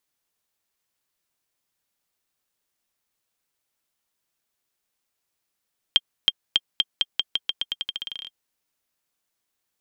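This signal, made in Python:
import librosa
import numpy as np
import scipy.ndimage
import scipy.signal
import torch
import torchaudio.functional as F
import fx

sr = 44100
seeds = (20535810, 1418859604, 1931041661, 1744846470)

y = fx.bouncing_ball(sr, first_gap_s=0.32, ratio=0.87, hz=3190.0, decay_ms=39.0, level_db=-3.5)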